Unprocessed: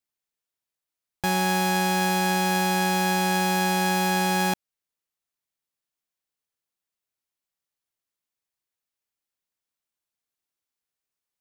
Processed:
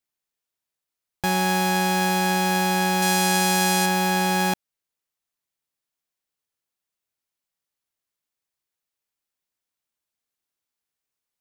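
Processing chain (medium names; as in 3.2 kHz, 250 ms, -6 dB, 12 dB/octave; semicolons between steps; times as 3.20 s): 3.02–3.86 s: peaking EQ 8.3 kHz +7.5 dB 2.2 oct; trim +1.5 dB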